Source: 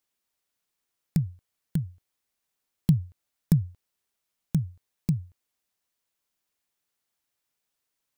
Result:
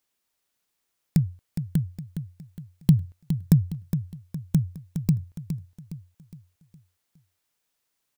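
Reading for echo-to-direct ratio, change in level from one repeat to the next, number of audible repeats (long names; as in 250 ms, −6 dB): −8.0 dB, −7.5 dB, 4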